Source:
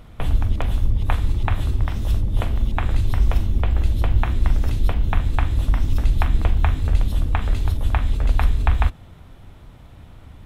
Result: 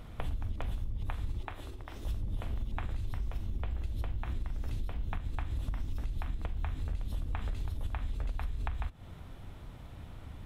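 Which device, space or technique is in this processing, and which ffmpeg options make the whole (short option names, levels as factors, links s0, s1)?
serial compression, peaks first: -filter_complex "[0:a]acompressor=threshold=0.0708:ratio=6,acompressor=threshold=0.0316:ratio=2,asettb=1/sr,asplit=3[s0][s1][s2];[s0]atrim=end=1.414[s3];[s1]atrim=start=1.41:end=2.05,asetpts=PTS-STARTPTS,afade=t=in:d=0.004:c=qsin,afade=t=out:st=0.636:d=0.004:c=qsin,lowshelf=f=250:t=q:w=1.5:g=-9[s4];[s2]atrim=start=2.046[s5];[s3][s4]acrossfade=d=0.004:c1=hsin:c2=qsin[s6];[s6][s5]acrossfade=d=0.004:c1=qsin:c2=hsin,volume=0.668"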